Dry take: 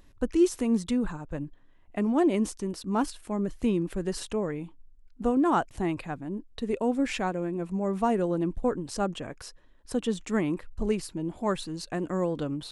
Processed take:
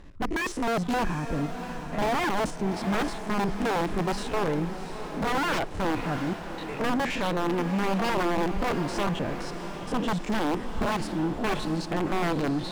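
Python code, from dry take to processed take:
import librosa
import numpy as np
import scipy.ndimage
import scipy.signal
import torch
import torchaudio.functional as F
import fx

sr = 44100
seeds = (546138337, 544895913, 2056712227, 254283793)

y = fx.spec_steps(x, sr, hold_ms=50)
y = fx.highpass(y, sr, hz=1200.0, slope=12, at=(6.33, 6.8))
y = (np.mod(10.0 ** (23.5 / 20.0) * y + 1.0, 2.0) - 1.0) / 10.0 ** (23.5 / 20.0)
y = scipy.signal.sosfilt(scipy.signal.butter(2, 9100.0, 'lowpass', fs=sr, output='sos'), y)
y = fx.leveller(y, sr, passes=3)
y = fx.high_shelf(y, sr, hz=3900.0, db=-12.0)
y = fx.echo_diffused(y, sr, ms=726, feedback_pct=52, wet_db=-9.0)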